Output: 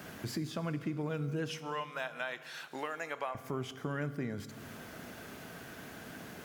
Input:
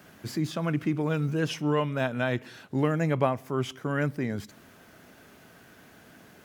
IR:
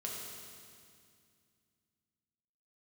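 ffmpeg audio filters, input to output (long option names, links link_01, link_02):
-filter_complex "[0:a]asettb=1/sr,asplit=3[link_01][link_02][link_03];[link_01]atrim=end=1.504[link_04];[link_02]atrim=start=1.5:end=3.35,asetpts=PTS-STARTPTS,afade=type=in:duration=0.004:curve=qsin,afade=type=out:start_time=1.846:duration=0.004:curve=qsin,highpass=830[link_05];[link_03]atrim=start=3.346[link_06];[link_04][link_05]acrossfade=duration=0.004:curve1=hsin:curve2=qsin[link_07];[link_07][link_06]acrossfade=duration=0.004:curve1=qsin:curve2=hsin,acompressor=threshold=-44dB:ratio=3,asplit=2[link_08][link_09];[1:a]atrim=start_sample=2205,asetrate=48510,aresample=44100[link_10];[link_09][link_10]afir=irnorm=-1:irlink=0,volume=-10dB[link_11];[link_08][link_11]amix=inputs=2:normalize=0,volume=4dB"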